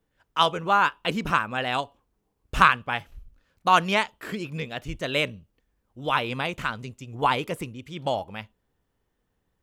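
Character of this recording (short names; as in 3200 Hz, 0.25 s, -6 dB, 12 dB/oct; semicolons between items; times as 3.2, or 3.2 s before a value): noise floor -76 dBFS; spectral tilt -2.0 dB/oct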